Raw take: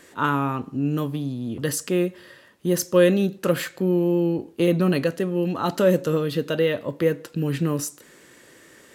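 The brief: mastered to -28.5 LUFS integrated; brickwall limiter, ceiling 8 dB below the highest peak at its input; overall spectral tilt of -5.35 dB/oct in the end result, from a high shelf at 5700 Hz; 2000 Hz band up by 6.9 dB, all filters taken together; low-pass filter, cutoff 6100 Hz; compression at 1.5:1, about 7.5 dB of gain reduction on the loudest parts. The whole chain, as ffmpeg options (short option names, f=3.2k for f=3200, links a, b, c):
-af "lowpass=6.1k,equalizer=f=2k:t=o:g=8.5,highshelf=f=5.7k:g=5.5,acompressor=threshold=-33dB:ratio=1.5,volume=2dB,alimiter=limit=-18dB:level=0:latency=1"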